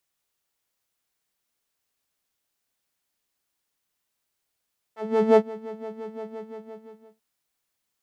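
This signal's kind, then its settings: synth patch with filter wobble A4, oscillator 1 saw, oscillator 2 square, interval +7 st, oscillator 2 level -13.5 dB, sub -11 dB, filter bandpass, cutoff 210 Hz, Q 1.3, filter envelope 2 oct, filter decay 0.06 s, filter sustain 10%, attack 407 ms, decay 0.06 s, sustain -20 dB, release 0.95 s, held 1.29 s, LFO 5.8 Hz, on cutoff 1.2 oct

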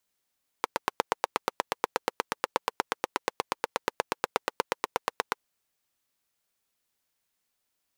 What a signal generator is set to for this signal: single-cylinder engine model, steady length 4.74 s, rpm 1000, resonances 500/900 Hz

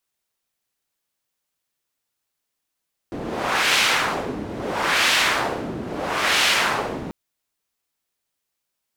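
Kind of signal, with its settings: wind-like swept noise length 3.99 s, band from 280 Hz, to 2.7 kHz, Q 1, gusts 3, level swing 12.5 dB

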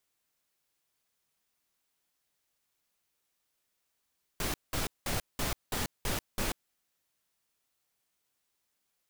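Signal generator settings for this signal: noise bursts pink, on 0.14 s, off 0.19 s, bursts 7, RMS -32 dBFS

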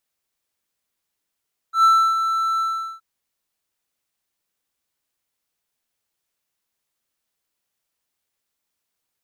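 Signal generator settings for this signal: ADSR triangle 1.33 kHz, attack 107 ms, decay 312 ms, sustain -8.5 dB, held 0.87 s, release 402 ms -8 dBFS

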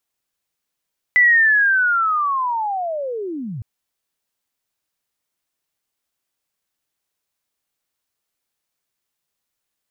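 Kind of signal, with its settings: sweep linear 2 kHz -> 100 Hz -9 dBFS -> -26 dBFS 2.46 s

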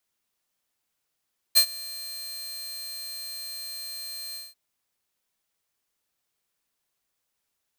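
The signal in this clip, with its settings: ADSR saw 4.17 kHz, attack 24 ms, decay 80 ms, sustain -22 dB, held 2.80 s, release 192 ms -10 dBFS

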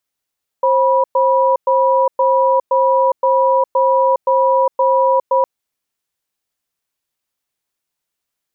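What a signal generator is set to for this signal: cadence 531 Hz, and 976 Hz, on 0.41 s, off 0.11 s, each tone -13 dBFS 4.81 s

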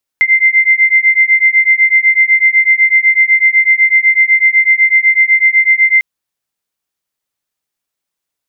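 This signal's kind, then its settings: beating tones 2.08 kHz, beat 8 Hz, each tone -9.5 dBFS 5.80 s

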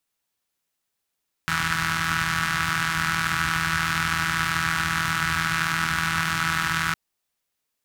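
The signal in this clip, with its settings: four-cylinder engine model, steady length 5.46 s, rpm 4900, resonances 82/130/1400 Hz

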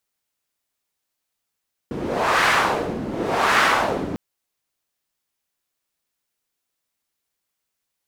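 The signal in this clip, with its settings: wind-like swept noise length 2.25 s, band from 270 Hz, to 1.5 kHz, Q 1.5, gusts 2, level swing 11 dB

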